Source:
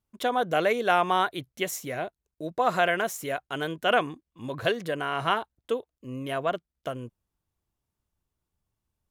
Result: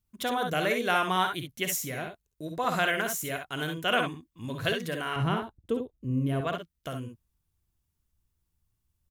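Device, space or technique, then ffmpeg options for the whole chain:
smiley-face EQ: -filter_complex "[0:a]asettb=1/sr,asplit=3[s0][s1][s2];[s0]atrim=end=5.164[s3];[s1]atrim=start=5.16:end=6.41,asetpts=PTS-STARTPTS,afade=t=in:d=0.004:c=qsin,afade=t=out:st=1.246:d=0.004:c=qsin,tiltshelf=f=690:g=9[s4];[s2]atrim=start=6.406[s5];[s3][s4]acrossfade=d=0.004:c1=hsin:c2=qsin[s6];[s6][s5]acrossfade=d=0.004:c1=qsin:c2=hsin,lowshelf=f=100:g=8,equalizer=f=610:t=o:w=2:g=-7,highshelf=f=9000:g=6.5,aecho=1:1:54|66:0.355|0.447"

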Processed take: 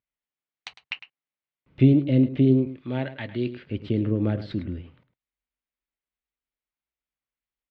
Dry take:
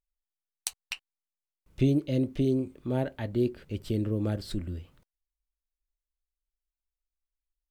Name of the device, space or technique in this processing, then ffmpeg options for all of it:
guitar cabinet: -filter_complex "[0:a]highpass=95,equalizer=f=130:t=q:w=4:g=6,equalizer=f=260:t=q:w=4:g=5,equalizer=f=2100:t=q:w=4:g=4,lowpass=f=3500:w=0.5412,lowpass=f=3500:w=1.3066,asettb=1/sr,asplit=3[s0][s1][s2];[s0]atrim=end=2.674[s3];[s1]atrim=start=2.67:end=3.67,asetpts=PTS-STARTPTS,afade=t=in:d=0.004:c=qsin,afade=t=out:st=0.996:d=0.004:c=qsin,tiltshelf=f=1300:g=-7.5[s4];[s2]atrim=start=3.666[s5];[s3][s4]acrossfade=d=0.004:c1=hsin:c2=qsin[s6];[s6][s5]acrossfade=d=0.004:c1=qsin:c2=hsin,asplit=2[s7][s8];[s8]adelay=105,volume=0.224,highshelf=f=4000:g=-2.36[s9];[s7][s9]amix=inputs=2:normalize=0,volume=1.5"

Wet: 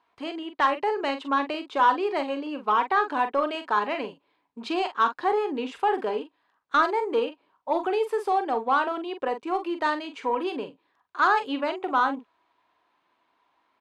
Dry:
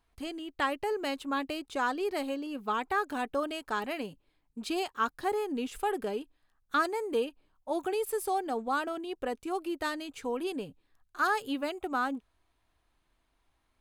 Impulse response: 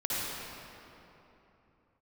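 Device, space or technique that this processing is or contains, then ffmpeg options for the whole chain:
intercom: -filter_complex "[0:a]highpass=310,lowpass=3500,equalizer=f=990:t=o:w=0.3:g=8.5,asoftclip=type=tanh:threshold=0.119,asplit=2[s0][s1];[s1]adelay=43,volume=0.355[s2];[s0][s2]amix=inputs=2:normalize=0,volume=2.11"

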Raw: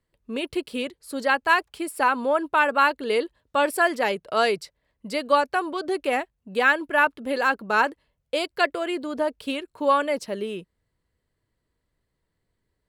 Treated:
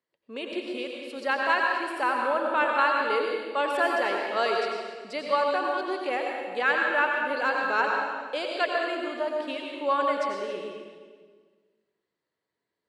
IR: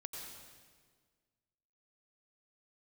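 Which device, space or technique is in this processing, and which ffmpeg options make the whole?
supermarket ceiling speaker: -filter_complex "[0:a]highpass=310,lowpass=5900[s0];[1:a]atrim=start_sample=2205[s1];[s0][s1]afir=irnorm=-1:irlink=0"

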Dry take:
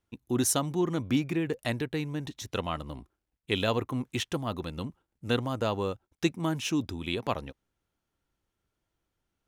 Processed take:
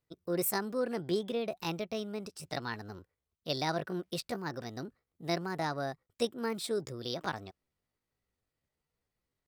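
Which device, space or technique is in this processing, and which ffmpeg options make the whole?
chipmunk voice: -af "asetrate=62367,aresample=44100,atempo=0.707107,volume=0.562"

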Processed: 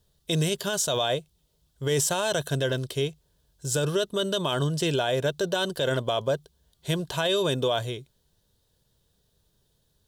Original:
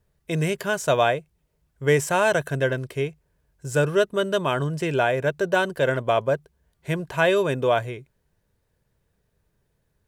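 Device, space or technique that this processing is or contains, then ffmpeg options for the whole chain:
over-bright horn tweeter: -af "highshelf=f=2800:t=q:w=3:g=7,alimiter=limit=0.158:level=0:latency=1:release=36"

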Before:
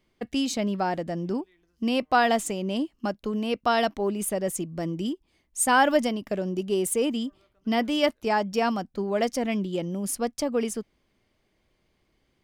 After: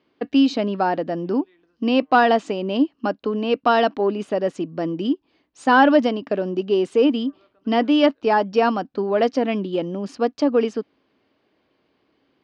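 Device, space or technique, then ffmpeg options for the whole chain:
overdrive pedal into a guitar cabinet: -filter_complex "[0:a]asplit=2[s0][s1];[s1]highpass=f=720:p=1,volume=2.82,asoftclip=type=tanh:threshold=0.376[s2];[s0][s2]amix=inputs=2:normalize=0,lowpass=f=6800:p=1,volume=0.501,highpass=98,equalizer=f=280:t=q:w=4:g=10,equalizer=f=450:t=q:w=4:g=4,equalizer=f=2100:t=q:w=4:g=-8,equalizer=f=3400:t=q:w=4:g=-5,lowpass=f=4200:w=0.5412,lowpass=f=4200:w=1.3066,volume=1.5"

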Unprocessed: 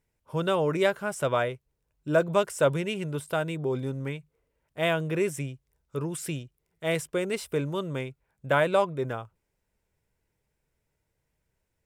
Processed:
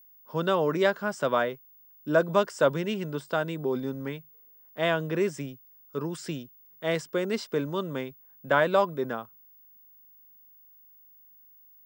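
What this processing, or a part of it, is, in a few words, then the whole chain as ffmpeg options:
old television with a line whistle: -af "highpass=f=160:w=0.5412,highpass=f=160:w=1.3066,equalizer=f=230:t=q:w=4:g=6,equalizer=f=1100:t=q:w=4:g=3,equalizer=f=1700:t=q:w=4:g=3,equalizer=f=2400:t=q:w=4:g=-6,equalizer=f=4900:t=q:w=4:g=6,lowpass=f=6800:w=0.5412,lowpass=f=6800:w=1.3066,aeval=exprs='val(0)+0.00224*sin(2*PI*15625*n/s)':c=same"

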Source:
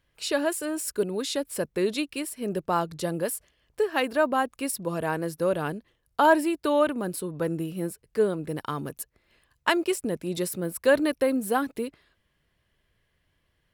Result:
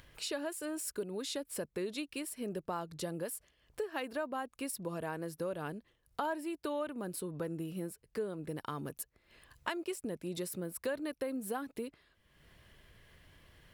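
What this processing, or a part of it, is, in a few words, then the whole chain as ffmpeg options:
upward and downward compression: -af "acompressor=mode=upward:threshold=0.00794:ratio=2.5,acompressor=threshold=0.0224:ratio=3,volume=0.631"

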